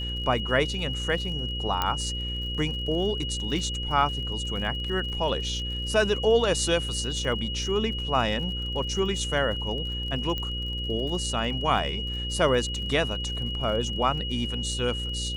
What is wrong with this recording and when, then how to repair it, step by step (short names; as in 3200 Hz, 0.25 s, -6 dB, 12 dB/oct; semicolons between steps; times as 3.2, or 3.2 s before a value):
buzz 60 Hz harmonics 9 -33 dBFS
crackle 46/s -36 dBFS
tone 2900 Hz -32 dBFS
1.82 pop -10 dBFS
10.38 pop -18 dBFS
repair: de-click; de-hum 60 Hz, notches 9; notch 2900 Hz, Q 30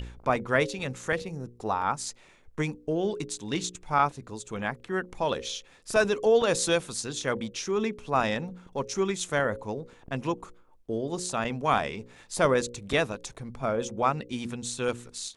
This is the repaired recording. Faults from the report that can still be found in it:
1.82 pop